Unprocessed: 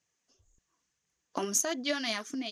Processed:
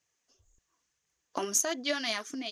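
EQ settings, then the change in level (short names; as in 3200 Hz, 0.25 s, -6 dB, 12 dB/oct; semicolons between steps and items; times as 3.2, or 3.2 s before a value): bell 190 Hz -6 dB 1.1 oct; +1.0 dB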